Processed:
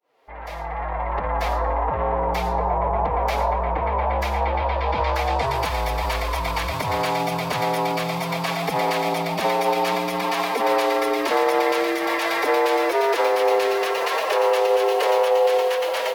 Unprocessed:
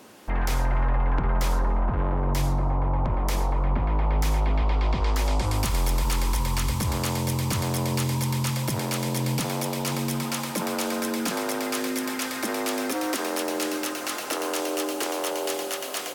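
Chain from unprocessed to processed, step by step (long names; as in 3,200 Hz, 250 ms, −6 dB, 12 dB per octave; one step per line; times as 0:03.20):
fade in at the beginning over 2.56 s
brickwall limiter −20.5 dBFS, peak gain reduction 5 dB
flat-topped bell 590 Hz +10 dB
phase-vocoder pitch shift with formants kept +4.5 semitones
graphic EQ with 10 bands 125 Hz −3 dB, 250 Hz −3 dB, 500 Hz +3 dB, 1,000 Hz +4 dB, 2,000 Hz +11 dB, 4,000 Hz +6 dB, 8,000 Hz −6 dB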